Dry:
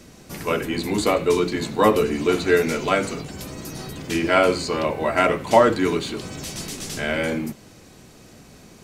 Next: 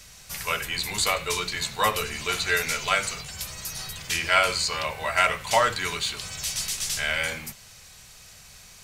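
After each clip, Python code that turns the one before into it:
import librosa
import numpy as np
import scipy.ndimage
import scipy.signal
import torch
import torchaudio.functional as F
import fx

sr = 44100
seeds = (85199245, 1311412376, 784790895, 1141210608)

y = fx.tone_stack(x, sr, knobs='10-0-10')
y = y * librosa.db_to_amplitude(6.0)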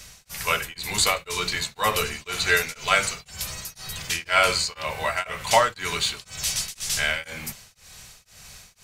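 y = x * np.abs(np.cos(np.pi * 2.0 * np.arange(len(x)) / sr))
y = y * librosa.db_to_amplitude(4.0)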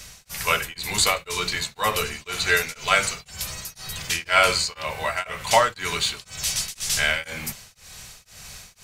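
y = fx.rider(x, sr, range_db=4, speed_s=2.0)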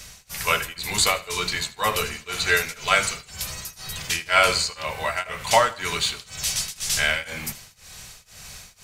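y = fx.echo_feedback(x, sr, ms=79, feedback_pct=40, wet_db=-19.5)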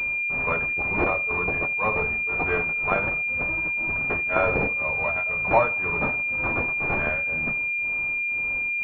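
y = fx.pwm(x, sr, carrier_hz=2400.0)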